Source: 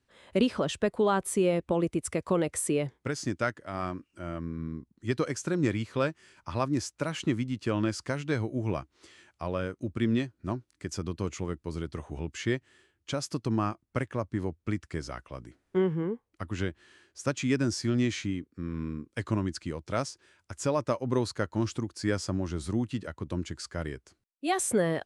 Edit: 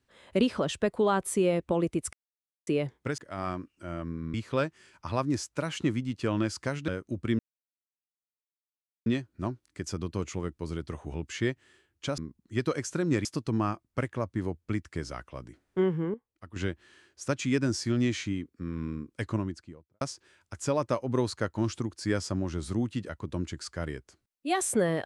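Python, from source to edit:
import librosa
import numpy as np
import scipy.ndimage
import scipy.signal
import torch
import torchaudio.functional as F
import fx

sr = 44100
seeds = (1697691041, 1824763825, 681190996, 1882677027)

y = fx.studio_fade_out(x, sr, start_s=19.14, length_s=0.85)
y = fx.edit(y, sr, fx.silence(start_s=2.13, length_s=0.54),
    fx.cut(start_s=3.18, length_s=0.36),
    fx.move(start_s=4.7, length_s=1.07, to_s=13.23),
    fx.cut(start_s=8.31, length_s=1.29),
    fx.insert_silence(at_s=10.11, length_s=1.67),
    fx.clip_gain(start_s=16.12, length_s=0.42, db=-10.0), tone=tone)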